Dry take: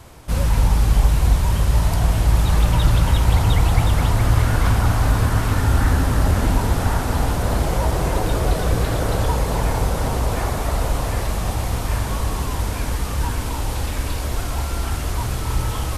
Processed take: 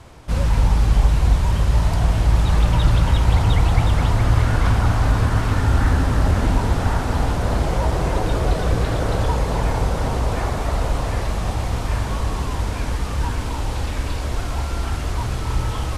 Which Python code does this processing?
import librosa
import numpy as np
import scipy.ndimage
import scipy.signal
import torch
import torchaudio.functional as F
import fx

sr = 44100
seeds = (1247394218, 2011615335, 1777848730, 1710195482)

y = fx.air_absorb(x, sr, metres=50.0)